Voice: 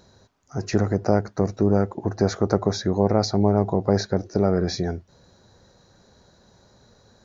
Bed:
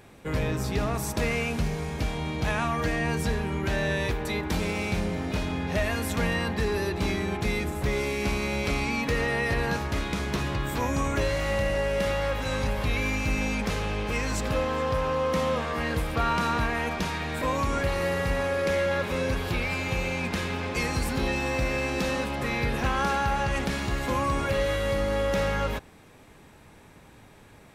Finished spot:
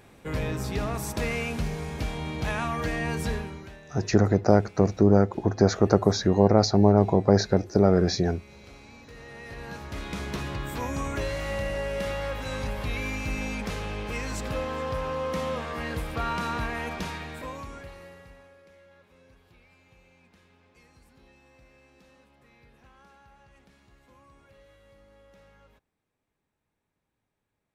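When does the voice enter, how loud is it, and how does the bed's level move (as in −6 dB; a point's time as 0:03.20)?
3.40 s, +1.0 dB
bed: 0:03.36 −2 dB
0:03.82 −22.5 dB
0:09.04 −22.5 dB
0:10.17 −4 dB
0:17.10 −4 dB
0:18.70 −30.5 dB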